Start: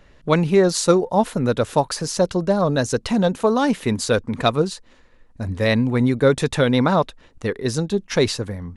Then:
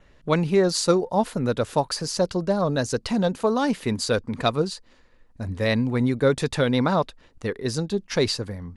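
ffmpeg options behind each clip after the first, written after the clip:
ffmpeg -i in.wav -af "adynamicequalizer=threshold=0.00398:dfrequency=4700:dqfactor=7.8:tfrequency=4700:tqfactor=7.8:attack=5:release=100:ratio=0.375:range=4:mode=boostabove:tftype=bell,volume=-4dB" out.wav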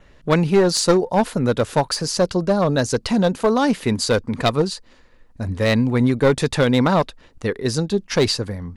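ffmpeg -i in.wav -af "aeval=exprs='clip(val(0),-1,0.133)':channel_layout=same,volume=5dB" out.wav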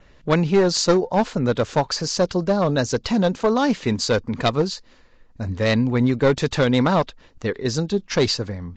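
ffmpeg -i in.wav -af "volume=-1.5dB" -ar 16000 -c:a libvorbis -b:a 48k out.ogg

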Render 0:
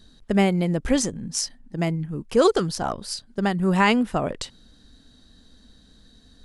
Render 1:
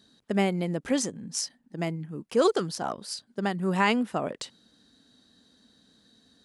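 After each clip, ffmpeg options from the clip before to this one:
ffmpeg -i in.wav -af "highpass=170,volume=-4.5dB" out.wav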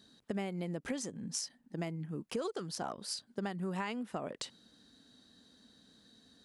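ffmpeg -i in.wav -af "acompressor=threshold=-33dB:ratio=8,volume=-1.5dB" out.wav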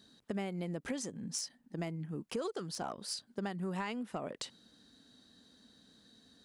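ffmpeg -i in.wav -af "asoftclip=type=tanh:threshold=-24dB" out.wav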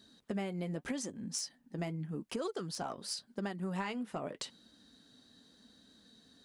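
ffmpeg -i in.wav -af "flanger=delay=3.1:depth=4.5:regen=-57:speed=0.85:shape=sinusoidal,volume=4.5dB" out.wav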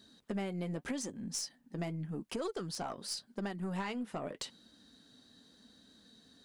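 ffmpeg -i in.wav -af "aeval=exprs='(tanh(25.1*val(0)+0.2)-tanh(0.2))/25.1':channel_layout=same,volume=1dB" out.wav

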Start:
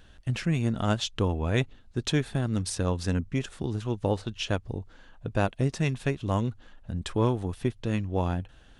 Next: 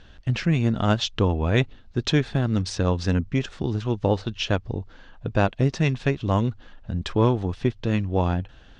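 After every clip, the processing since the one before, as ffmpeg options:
ffmpeg -i in.wav -af "lowpass=frequency=6000:width=0.5412,lowpass=frequency=6000:width=1.3066,volume=5dB" out.wav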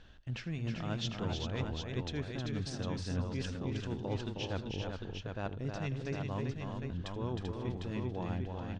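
ffmpeg -i in.wav -af "areverse,acompressor=threshold=-27dB:ratio=6,areverse,aecho=1:1:80|313|389|544|753:0.119|0.531|0.531|0.1|0.531,volume=-8dB" out.wav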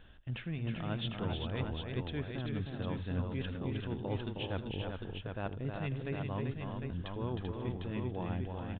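ffmpeg -i in.wav -af "aresample=8000,aresample=44100" out.wav

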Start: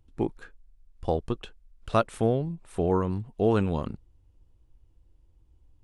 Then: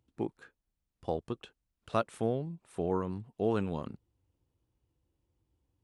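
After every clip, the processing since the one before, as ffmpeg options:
ffmpeg -i in.wav -af "highpass=110,volume=-6.5dB" out.wav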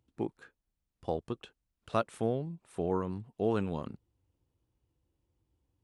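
ffmpeg -i in.wav -af anull out.wav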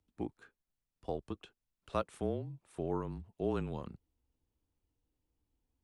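ffmpeg -i in.wav -af "afreqshift=-30,volume=-4.5dB" out.wav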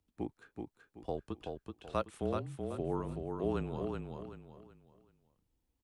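ffmpeg -i in.wav -af "aecho=1:1:379|758|1137|1516:0.596|0.191|0.061|0.0195" out.wav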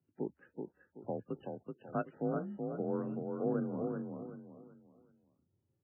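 ffmpeg -i in.wav -af "afreqshift=65,equalizer=frequency=250:width_type=o:width=0.67:gain=4,equalizer=frequency=1000:width_type=o:width=0.67:gain=-7,equalizer=frequency=2500:width_type=o:width=0.67:gain=-8" -ar 8000 -c:a libmp3lame -b:a 8k out.mp3

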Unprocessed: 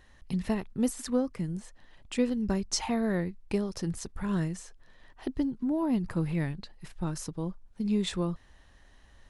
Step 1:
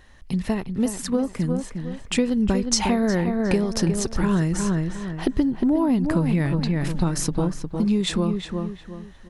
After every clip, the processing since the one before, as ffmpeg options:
ffmpeg -i in.wav -filter_complex "[0:a]dynaudnorm=framelen=360:gausssize=11:maxgain=9dB,asplit=2[link_01][link_02];[link_02]adelay=358,lowpass=frequency=2700:poles=1,volume=-7.5dB,asplit=2[link_03][link_04];[link_04]adelay=358,lowpass=frequency=2700:poles=1,volume=0.33,asplit=2[link_05][link_06];[link_06]adelay=358,lowpass=frequency=2700:poles=1,volume=0.33,asplit=2[link_07][link_08];[link_08]adelay=358,lowpass=frequency=2700:poles=1,volume=0.33[link_09];[link_01][link_03][link_05][link_07][link_09]amix=inputs=5:normalize=0,acompressor=threshold=-24dB:ratio=6,volume=6.5dB" out.wav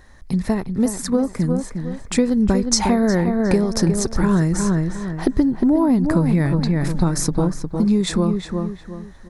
ffmpeg -i in.wav -af "equalizer=frequency=2900:width=3.2:gain=-13,volume=4dB" out.wav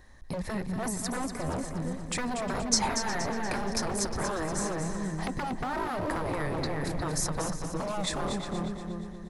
ffmpeg -i in.wav -filter_complex "[0:a]bandreject=frequency=1400:width=12,acrossover=split=710[link_01][link_02];[link_01]aeval=exprs='0.0891*(abs(mod(val(0)/0.0891+3,4)-2)-1)':channel_layout=same[link_03];[link_03][link_02]amix=inputs=2:normalize=0,aecho=1:1:237|474|711|948|1185:0.398|0.175|0.0771|0.0339|0.0149,volume=-6.5dB" out.wav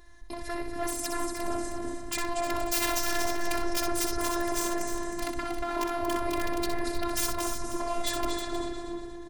ffmpeg -i in.wav -af "aeval=exprs='(mod(13.3*val(0)+1,2)-1)/13.3':channel_layout=same,aecho=1:1:63|314:0.473|0.299,afftfilt=real='hypot(re,im)*cos(PI*b)':imag='0':win_size=512:overlap=0.75,volume=4dB" out.wav

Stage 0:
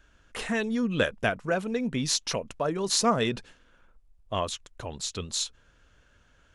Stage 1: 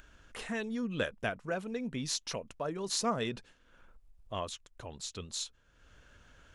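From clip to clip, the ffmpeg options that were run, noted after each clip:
ffmpeg -i in.wav -af "acompressor=mode=upward:threshold=-39dB:ratio=2.5,volume=-8dB" out.wav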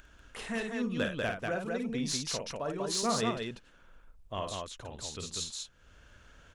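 ffmpeg -i in.wav -filter_complex "[0:a]volume=22dB,asoftclip=hard,volume=-22dB,asplit=2[link_01][link_02];[link_02]aecho=0:1:52.48|192.4:0.501|0.708[link_03];[link_01][link_03]amix=inputs=2:normalize=0" out.wav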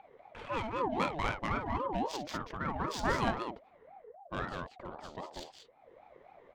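ffmpeg -i in.wav -af "adynamicsmooth=sensitivity=3.5:basefreq=1400,aeval=exprs='val(0)*sin(2*PI*620*n/s+620*0.3/3.8*sin(2*PI*3.8*n/s))':channel_layout=same,volume=3dB" out.wav

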